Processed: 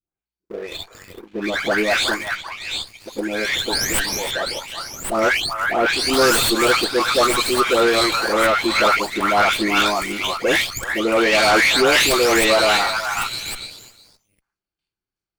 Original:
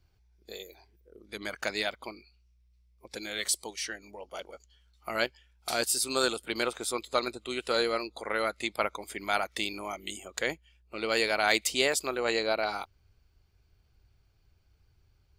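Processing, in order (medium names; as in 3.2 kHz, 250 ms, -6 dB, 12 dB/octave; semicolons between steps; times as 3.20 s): delay that grows with frequency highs late, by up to 454 ms; gate with hold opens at -56 dBFS; resonant low shelf 150 Hz -10.5 dB, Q 1.5; waveshaping leveller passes 2; saturation -17.5 dBFS, distortion -22 dB; on a send: repeats whose band climbs or falls 368 ms, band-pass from 1.3 kHz, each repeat 1.4 oct, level -1 dB; on the sum: sliding maximum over 3 samples; trim +9 dB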